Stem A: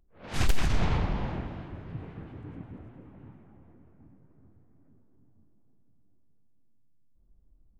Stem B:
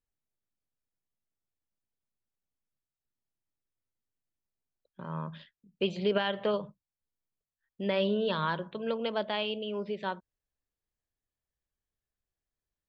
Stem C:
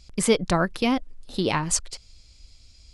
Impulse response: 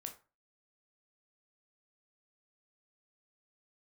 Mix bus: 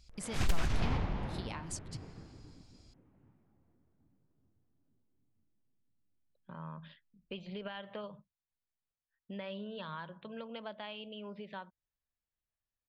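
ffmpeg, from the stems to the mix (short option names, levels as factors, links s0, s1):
-filter_complex "[0:a]volume=0.501,afade=t=out:st=1.95:d=0.68:silence=0.298538[s0];[1:a]lowpass=3900,adelay=1500,volume=0.668[s1];[2:a]volume=0.282[s2];[s1][s2]amix=inputs=2:normalize=0,equalizer=f=390:w=1.6:g=-7,acompressor=threshold=0.00708:ratio=2.5,volume=1[s3];[s0][s3]amix=inputs=2:normalize=0"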